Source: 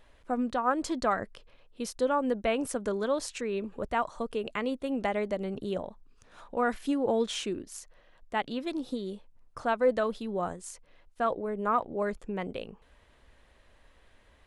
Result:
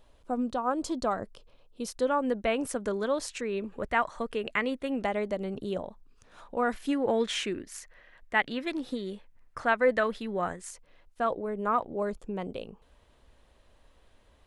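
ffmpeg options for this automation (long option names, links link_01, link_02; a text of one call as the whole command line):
ffmpeg -i in.wav -af "asetnsamples=nb_out_samples=441:pad=0,asendcmd='1.88 equalizer g 2;3.8 equalizer g 9;5.02 equalizer g -0.5;6.88 equalizer g 11;10.7 equalizer g 0;12 equalizer g -7',equalizer=frequency=1900:width_type=o:width=0.87:gain=-10" out.wav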